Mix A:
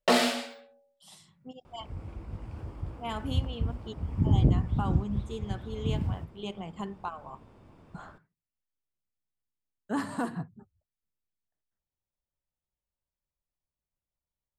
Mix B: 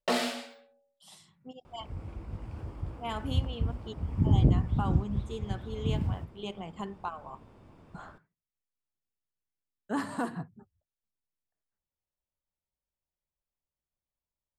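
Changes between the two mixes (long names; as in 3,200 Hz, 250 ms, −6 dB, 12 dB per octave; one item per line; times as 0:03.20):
speech: add bass and treble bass −3 dB, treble −1 dB
first sound −5.5 dB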